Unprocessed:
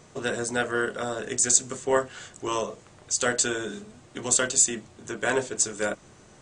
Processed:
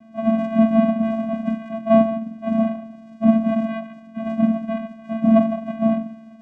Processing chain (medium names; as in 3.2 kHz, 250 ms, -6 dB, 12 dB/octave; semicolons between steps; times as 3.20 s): spectrum inverted on a logarithmic axis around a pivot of 490 Hz; peaking EQ 590 Hz +8.5 dB 0.36 oct; two-slope reverb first 0.62 s, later 2.5 s, from -25 dB, DRR 2 dB; vocoder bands 4, square 223 Hz; trim +7 dB